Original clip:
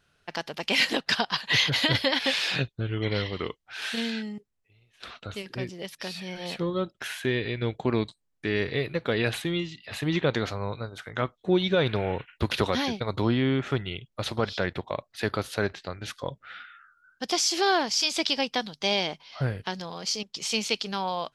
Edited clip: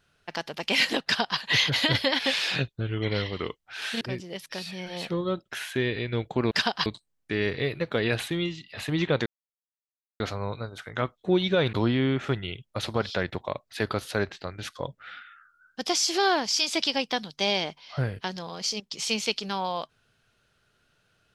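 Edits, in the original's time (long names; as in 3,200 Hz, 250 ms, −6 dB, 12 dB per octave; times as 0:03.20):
0:01.04–0:01.39: duplicate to 0:08.00
0:04.01–0:05.50: remove
0:10.40: splice in silence 0.94 s
0:11.93–0:13.16: remove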